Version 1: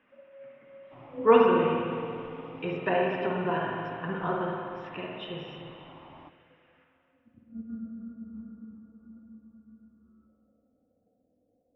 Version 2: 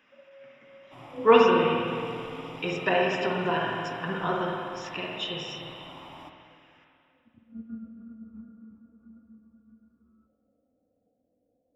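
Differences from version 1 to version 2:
first sound: send −8.5 dB
second sound: send +11.0 dB
master: remove high-frequency loss of the air 500 metres

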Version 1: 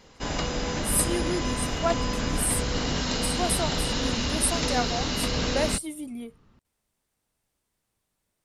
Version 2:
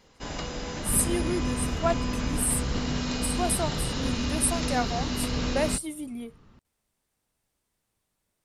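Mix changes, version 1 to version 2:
first sound −5.5 dB
second sound +4.0 dB

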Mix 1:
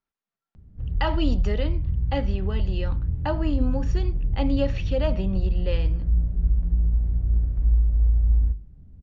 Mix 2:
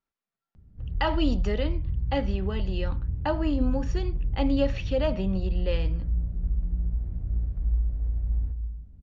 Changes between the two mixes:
background −6.5 dB
reverb: on, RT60 1.0 s

